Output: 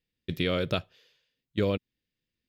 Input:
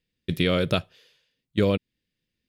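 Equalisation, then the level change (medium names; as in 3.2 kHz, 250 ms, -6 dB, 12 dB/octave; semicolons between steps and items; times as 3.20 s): peaking EQ 180 Hz -2.5 dB 0.53 oct; peaking EQ 9.5 kHz -12 dB 0.32 oct; -4.5 dB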